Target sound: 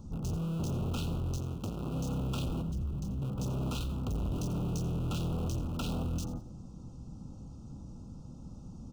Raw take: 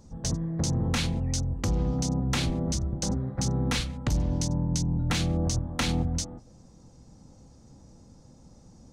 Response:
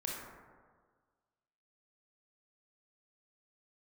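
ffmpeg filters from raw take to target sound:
-filter_complex "[0:a]asplit=2[s0][s1];[s1]aeval=exprs='(mod(44.7*val(0)+1,2)-1)/44.7':c=same,volume=0.708[s2];[s0][s2]amix=inputs=2:normalize=0,firequalizer=gain_entry='entry(190,0);entry(510,-9);entry(1600,-2);entry(4700,-13)':delay=0.05:min_phase=1,asoftclip=type=tanh:threshold=0.0211,asettb=1/sr,asplit=3[s3][s4][s5];[s3]atrim=end=2.614[s6];[s4]atrim=start=2.61:end=3.22,asetpts=PTS-STARTPTS,afade=t=in:d=0.004:c=qsin,afade=t=out:st=0.606:d=0.004:c=qsin,acrossover=split=220[s7][s8];[s8]acompressor=threshold=0.00224:ratio=5[s9];[s7][s9]amix=inputs=2:normalize=0[s10];[s5]atrim=start=3.216[s11];[s6][s10]acrossfade=d=0.004:c1=hsin:c2=qsin[s12];[s12][s11]acrossfade=d=0.004:c1=qsin:c2=hsin,asuperstop=centerf=1900:order=12:qfactor=1.7,highshelf=f=10000:g=4,asettb=1/sr,asplit=3[s13][s14][s15];[s13]atrim=end=1.374[s16];[s14]atrim=start=1.37:end=1.94,asetpts=PTS-STARTPTS,afade=t=in:d=0.004:c=qsin,afade=t=out:st=0.566:d=0.004:c=qsin,highpass=95[s17];[s15]atrim=start=1.936[s18];[s16][s17]acrossfade=d=0.004:c1=hsin:c2=qsin[s19];[s19][s18]acrossfade=d=0.004:c1=qsin:c2=hsin,asplit=4[s20][s21][s22][s23];[s21]adelay=86,afreqshift=31,volume=0.178[s24];[s22]adelay=172,afreqshift=62,volume=0.0531[s25];[s23]adelay=258,afreqshift=93,volume=0.016[s26];[s20][s24][s25][s26]amix=inputs=4:normalize=0,volume=1.33"

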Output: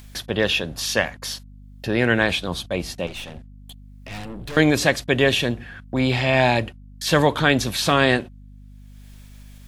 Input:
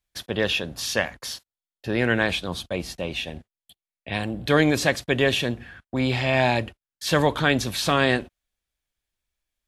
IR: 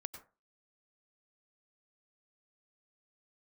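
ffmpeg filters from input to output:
-filter_complex "[0:a]acompressor=mode=upward:threshold=0.0251:ratio=2.5,asettb=1/sr,asplit=3[s0][s1][s2];[s0]atrim=end=3.074[s3];[s1]atrim=start=3.07:end=4.57,asetpts=PTS-STARTPTS,afade=t=in:d=0.004:c=qsin,afade=t=out:st=1.496:d=0.004:c=qsin,aeval=exprs='(tanh(50.1*val(0)+0.55)-tanh(0.55))/50.1':c=same[s4];[s2]atrim=start=4.566[s5];[s3][s4]acrossfade=d=0.004:c1=hsin:c2=qsin[s6];[s6][s5]acrossfade=d=0.004:c1=qsin:c2=hsin,aeval=exprs='val(0)+0.00562*(sin(2*PI*50*n/s)+sin(2*PI*2*50*n/s)/2+sin(2*PI*3*50*n/s)/3+sin(2*PI*4*50*n/s)/4+sin(2*PI*5*50*n/s)/5)':c=same,volume=1.41"

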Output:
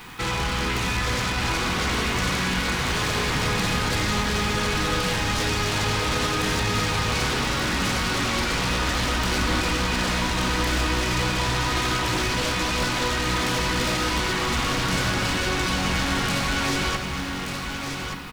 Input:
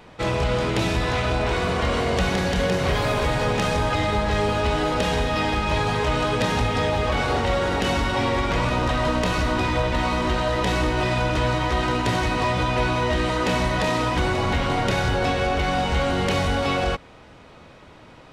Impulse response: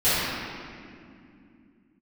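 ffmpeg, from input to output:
-filter_complex "[0:a]acrossover=split=3100[s0][s1];[s1]acompressor=threshold=0.0112:ratio=4:attack=1:release=60[s2];[s0][s2]amix=inputs=2:normalize=0,acrossover=split=720[s3][s4];[s3]alimiter=limit=0.0708:level=0:latency=1[s5];[s4]aeval=exprs='0.224*(cos(1*acos(clip(val(0)/0.224,-1,1)))-cos(1*PI/2))+0.1*(cos(7*acos(clip(val(0)/0.224,-1,1)))-cos(7*PI/2))':c=same[s6];[s5][s6]amix=inputs=2:normalize=0,acrusher=bits=9:dc=4:mix=0:aa=0.000001,asoftclip=type=tanh:threshold=0.0596,aecho=1:1:1179:0.501,asplit=2[s7][s8];[1:a]atrim=start_sample=2205[s9];[s8][s9]afir=irnorm=-1:irlink=0,volume=0.0708[s10];[s7][s10]amix=inputs=2:normalize=0,volume=1.33"

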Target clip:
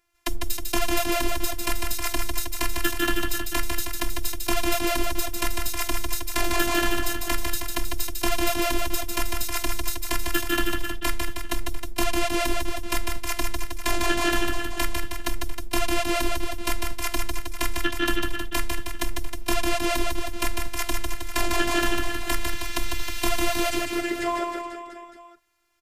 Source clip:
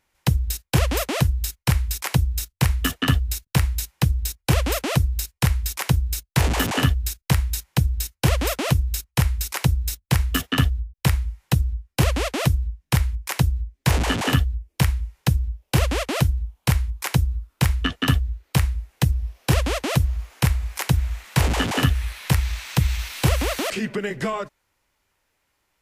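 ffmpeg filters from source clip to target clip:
-af "aecho=1:1:150|315|496.5|696.2|915.8:0.631|0.398|0.251|0.158|0.1,afftfilt=real='hypot(re,im)*cos(PI*b)':imag='0':win_size=512:overlap=0.75,volume=1.19"

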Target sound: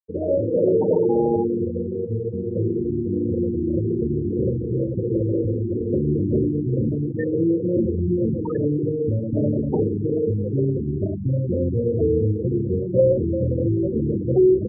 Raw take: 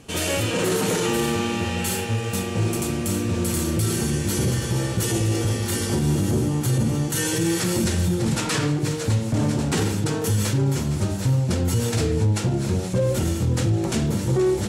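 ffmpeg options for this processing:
-filter_complex "[0:a]tiltshelf=f=750:g=6.5,asplit=2[s0][s1];[s1]aecho=0:1:348:0.282[s2];[s0][s2]amix=inputs=2:normalize=0,afftfilt=real='re*gte(hypot(re,im),0.178)':imag='im*gte(hypot(re,im),0.178)':win_size=1024:overlap=0.75,acrossover=split=420 2200:gain=0.141 1 0.0794[s3][s4][s5];[s3][s4][s5]amix=inputs=3:normalize=0,volume=2.51"

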